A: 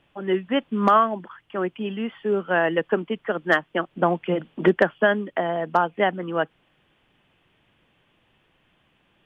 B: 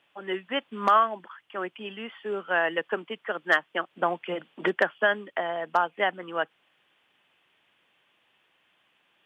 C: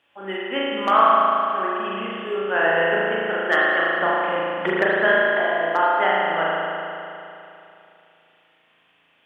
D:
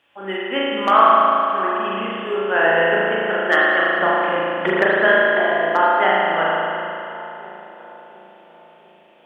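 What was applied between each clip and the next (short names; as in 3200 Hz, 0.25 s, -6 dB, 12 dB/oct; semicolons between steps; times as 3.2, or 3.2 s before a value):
HPF 980 Hz 6 dB/oct
reverb RT60 2.8 s, pre-delay 36 ms, DRR -6.5 dB
darkening echo 0.698 s, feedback 58%, low-pass 1100 Hz, level -14.5 dB; gain +3 dB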